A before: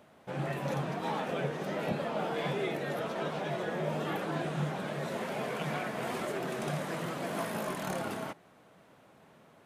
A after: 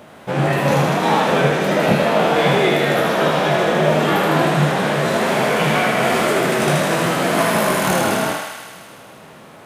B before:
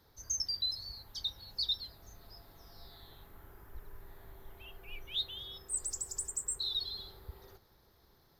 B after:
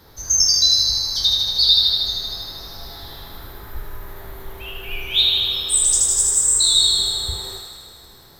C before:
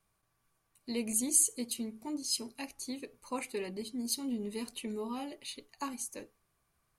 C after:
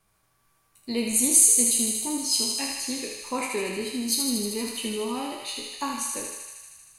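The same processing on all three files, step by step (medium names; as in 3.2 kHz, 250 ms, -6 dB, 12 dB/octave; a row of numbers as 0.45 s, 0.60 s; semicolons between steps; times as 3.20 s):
spectral sustain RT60 0.37 s; thinning echo 78 ms, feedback 79%, high-pass 650 Hz, level -3.5 dB; peak normalisation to -3 dBFS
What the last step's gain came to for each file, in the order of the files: +15.5 dB, +15.5 dB, +6.5 dB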